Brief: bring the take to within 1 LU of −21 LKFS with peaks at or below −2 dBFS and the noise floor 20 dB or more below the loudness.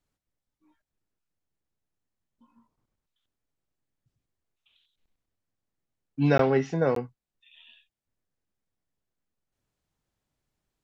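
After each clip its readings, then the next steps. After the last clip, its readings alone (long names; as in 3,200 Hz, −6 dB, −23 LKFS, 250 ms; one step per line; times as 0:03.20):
number of dropouts 2; longest dropout 13 ms; integrated loudness −25.0 LKFS; sample peak −9.0 dBFS; target loudness −21.0 LKFS
→ repair the gap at 0:06.38/0:06.95, 13 ms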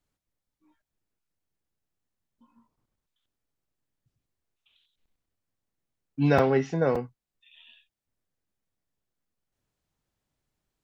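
number of dropouts 0; integrated loudness −25.0 LKFS; sample peak −9.0 dBFS; target loudness −21.0 LKFS
→ level +4 dB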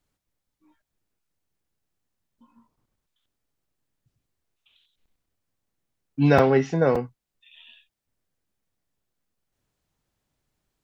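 integrated loudness −21.0 LKFS; sample peak −5.0 dBFS; background noise floor −84 dBFS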